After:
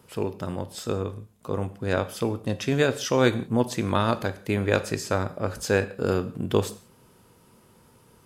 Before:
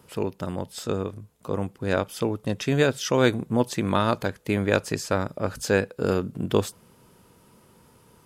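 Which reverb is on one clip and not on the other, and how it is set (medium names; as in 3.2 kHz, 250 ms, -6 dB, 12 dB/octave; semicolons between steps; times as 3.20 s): gated-style reverb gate 200 ms falling, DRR 11 dB; trim -1 dB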